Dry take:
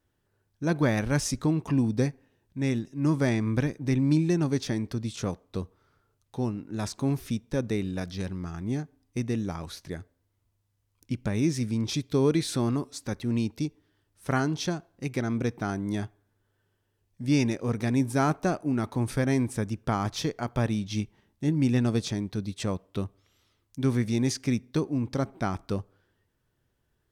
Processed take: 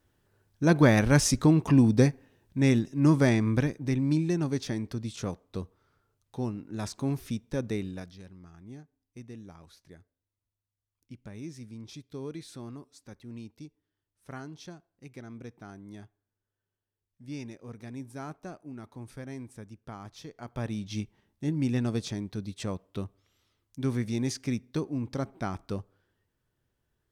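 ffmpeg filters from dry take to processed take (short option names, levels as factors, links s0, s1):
-af "volume=6.31,afade=t=out:st=2.84:d=1.13:silence=0.421697,afade=t=out:st=7.76:d=0.43:silence=0.237137,afade=t=in:st=20.27:d=0.63:silence=0.266073"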